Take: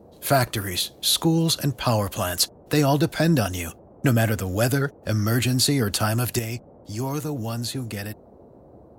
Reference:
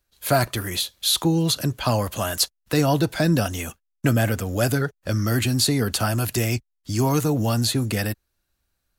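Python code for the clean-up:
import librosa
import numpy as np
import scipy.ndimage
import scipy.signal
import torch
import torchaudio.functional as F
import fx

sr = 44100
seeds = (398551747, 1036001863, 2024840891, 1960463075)

y = fx.noise_reduce(x, sr, print_start_s=8.22, print_end_s=8.72, reduce_db=26.0)
y = fx.gain(y, sr, db=fx.steps((0.0, 0.0), (6.39, 7.0)))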